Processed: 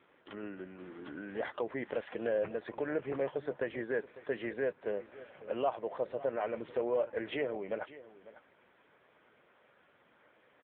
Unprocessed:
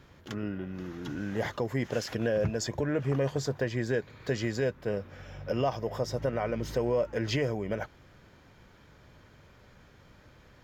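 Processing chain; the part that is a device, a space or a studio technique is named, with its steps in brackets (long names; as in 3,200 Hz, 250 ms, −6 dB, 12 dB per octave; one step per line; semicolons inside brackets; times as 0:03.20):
satellite phone (band-pass filter 360–3,300 Hz; single-tap delay 549 ms −17 dB; level −1.5 dB; AMR narrowband 6.7 kbit/s 8,000 Hz)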